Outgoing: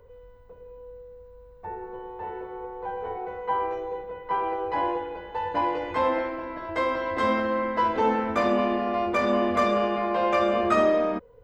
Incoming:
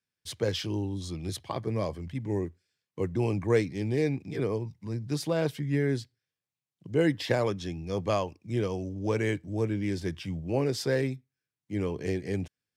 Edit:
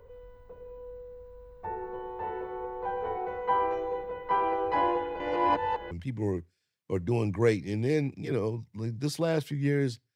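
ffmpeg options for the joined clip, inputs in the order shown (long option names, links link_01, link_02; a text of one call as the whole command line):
ffmpeg -i cue0.wav -i cue1.wav -filter_complex "[0:a]apad=whole_dur=10.15,atrim=end=10.15,asplit=2[link_01][link_02];[link_01]atrim=end=5.202[link_03];[link_02]atrim=start=5.198:end=5.912,asetpts=PTS-STARTPTS,areverse[link_04];[1:a]atrim=start=1.988:end=6.23[link_05];[link_03][link_04]acrossfade=duration=0.004:curve1=hsin:curve2=hsin[link_06];[link_06][link_05]acrossfade=duration=0.004:curve1=hsin:curve2=hsin" out.wav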